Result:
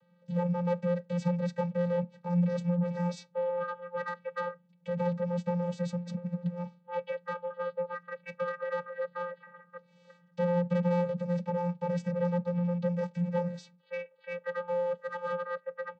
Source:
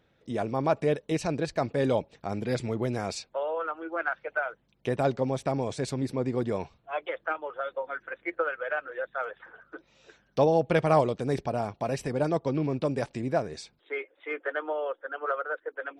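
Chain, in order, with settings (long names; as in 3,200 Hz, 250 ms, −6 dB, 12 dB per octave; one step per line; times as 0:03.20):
0:14.67–0:15.28: mu-law and A-law mismatch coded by mu
low-shelf EQ 160 Hz −7.5 dB
soft clipping −28 dBFS, distortion −8 dB
0:05.97–0:06.60: compressor whose output falls as the input rises −39 dBFS, ratio −0.5
on a send at −20.5 dB: comb filter 4.6 ms, depth 93% + convolution reverb RT60 0.20 s, pre-delay 3 ms
on the sum: channel vocoder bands 16, square 175 Hz
level +4 dB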